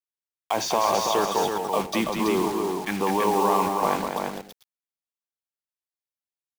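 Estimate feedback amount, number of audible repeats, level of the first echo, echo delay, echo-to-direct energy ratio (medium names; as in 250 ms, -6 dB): no regular repeats, 4, -17.0 dB, 77 ms, -2.0 dB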